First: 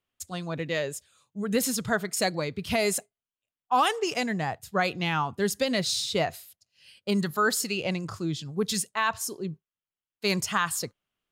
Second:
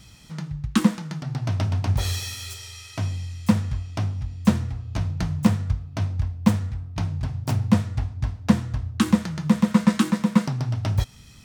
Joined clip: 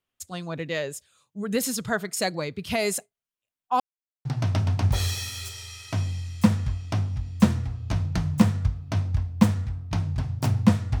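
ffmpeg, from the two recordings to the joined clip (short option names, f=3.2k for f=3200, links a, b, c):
-filter_complex "[0:a]apad=whole_dur=11,atrim=end=11,asplit=2[a][b];[a]atrim=end=3.8,asetpts=PTS-STARTPTS,afade=t=out:st=3.796:d=0.004:c=hsin[c];[b]atrim=start=3.8:end=4.25,asetpts=PTS-STARTPTS,volume=0[d];[1:a]atrim=start=1.3:end=8.05,asetpts=PTS-STARTPTS,afade=t=in:d=0.004:c=hsin[e];[c][d][e]concat=n=3:v=0:a=1"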